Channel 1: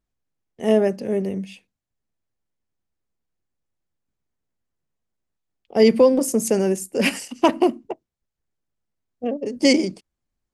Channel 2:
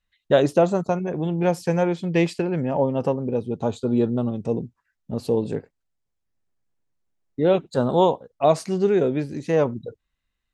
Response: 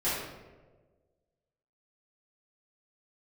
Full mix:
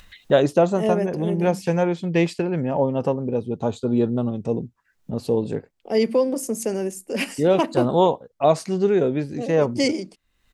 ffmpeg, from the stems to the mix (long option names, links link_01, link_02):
-filter_complex "[0:a]highpass=160,adelay=150,volume=-5dB[link_01];[1:a]volume=0.5dB[link_02];[link_01][link_02]amix=inputs=2:normalize=0,acompressor=mode=upward:threshold=-28dB:ratio=2.5"